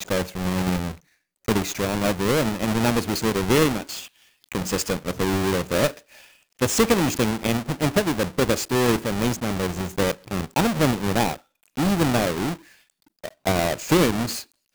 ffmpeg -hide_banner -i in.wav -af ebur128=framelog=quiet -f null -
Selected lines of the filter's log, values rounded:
Integrated loudness:
  I:         -23.2 LUFS
  Threshold: -33.7 LUFS
Loudness range:
  LRA:         1.8 LU
  Threshold: -43.6 LUFS
  LRA low:   -24.3 LUFS
  LRA high:  -22.5 LUFS